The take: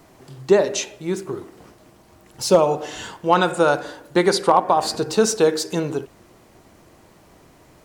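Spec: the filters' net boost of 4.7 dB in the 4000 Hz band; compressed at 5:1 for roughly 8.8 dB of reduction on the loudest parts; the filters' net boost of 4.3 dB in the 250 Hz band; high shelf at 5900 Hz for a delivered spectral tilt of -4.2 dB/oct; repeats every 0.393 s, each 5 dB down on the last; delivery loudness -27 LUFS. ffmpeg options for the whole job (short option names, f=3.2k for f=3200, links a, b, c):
-af "equalizer=f=250:t=o:g=7,equalizer=f=4k:t=o:g=9,highshelf=f=5.9k:g=-8.5,acompressor=threshold=-17dB:ratio=5,aecho=1:1:393|786|1179|1572|1965|2358|2751:0.562|0.315|0.176|0.0988|0.0553|0.031|0.0173,volume=-4dB"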